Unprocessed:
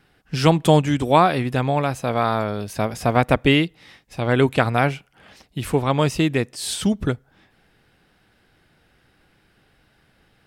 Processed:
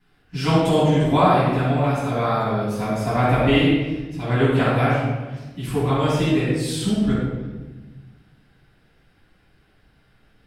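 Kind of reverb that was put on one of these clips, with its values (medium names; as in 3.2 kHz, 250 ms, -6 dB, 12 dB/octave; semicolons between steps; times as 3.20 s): simulated room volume 810 m³, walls mixed, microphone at 9.5 m; trim -16.5 dB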